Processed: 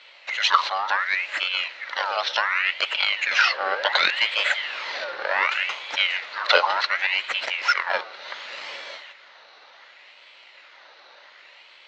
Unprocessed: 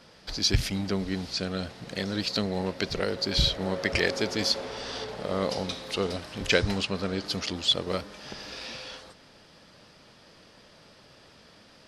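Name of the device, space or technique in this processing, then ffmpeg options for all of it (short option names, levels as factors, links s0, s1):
voice changer toy: -af "aeval=exprs='val(0)*sin(2*PI*1900*n/s+1900*0.5/0.68*sin(2*PI*0.68*n/s))':c=same,highpass=490,equalizer=f=570:t=q:w=4:g=10,equalizer=f=930:t=q:w=4:g=5,equalizer=f=1400:t=q:w=4:g=4,equalizer=f=2000:t=q:w=4:g=7,equalizer=f=2800:t=q:w=4:g=4,equalizer=f=4100:t=q:w=4:g=9,lowpass=f=4600:w=0.5412,lowpass=f=4600:w=1.3066,volume=1.5"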